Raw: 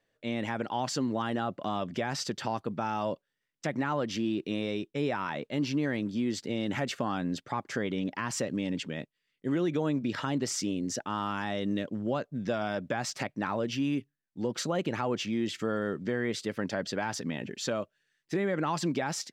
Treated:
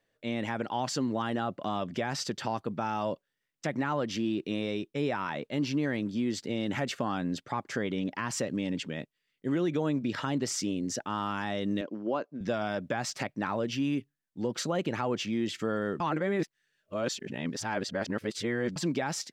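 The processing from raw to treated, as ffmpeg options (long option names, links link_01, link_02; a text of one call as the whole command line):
ffmpeg -i in.wav -filter_complex "[0:a]asettb=1/sr,asplit=3[link_01][link_02][link_03];[link_01]atrim=end=11.814[link_04];[link_02]atrim=start=11.81:end=12.41,asetpts=PTS-STARTPTS,afade=type=in:duration=0.004:curve=qsin,afade=type=out:start_time=0.596:duration=0.004:curve=qsin,highpass=280,equalizer=frequency=320:width_type=q:width=4:gain=5,equalizer=frequency=1000:width_type=q:width=4:gain=4,equalizer=frequency=1900:width_type=q:width=4:gain=-5,equalizer=frequency=3600:width_type=q:width=4:gain=-9,lowpass=frequency=5600:width=0.5412,lowpass=frequency=5600:width=1.3066[link_05];[link_03]atrim=start=12.406[link_06];[link_04][link_05]acrossfade=duration=0.004:curve1=hsin:curve2=qsin[link_07];[link_07][link_06]acrossfade=duration=0.004:curve1=qsin:curve2=hsin,asplit=3[link_08][link_09][link_10];[link_08]atrim=end=16.002[link_11];[link_09]atrim=start=15.998:end=18.762,asetpts=PTS-STARTPTS,areverse[link_12];[link_10]atrim=start=18.758[link_13];[link_11][link_12]acrossfade=duration=0.004:curve1=hsin:curve2=hsin[link_14];[link_14][link_13]acrossfade=duration=0.004:curve1=hsin:curve2=hsin" out.wav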